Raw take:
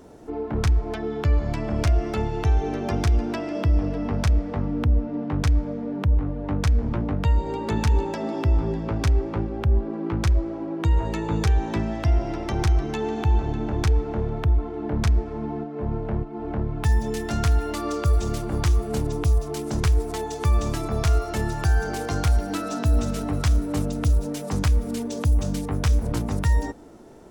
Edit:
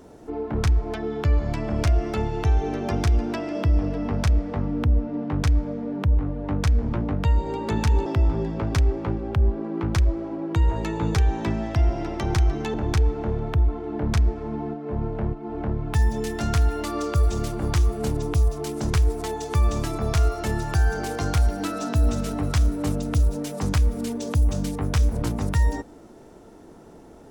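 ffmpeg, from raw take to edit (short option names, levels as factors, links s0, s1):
-filter_complex "[0:a]asplit=3[s0][s1][s2];[s0]atrim=end=8.062[s3];[s1]atrim=start=8.348:end=13.032[s4];[s2]atrim=start=13.638[s5];[s3][s4]acrossfade=d=0.004:c1=hsin:c2=hsin[s6];[s6][s5]acrossfade=d=0.004:c1=hsin:c2=hsin"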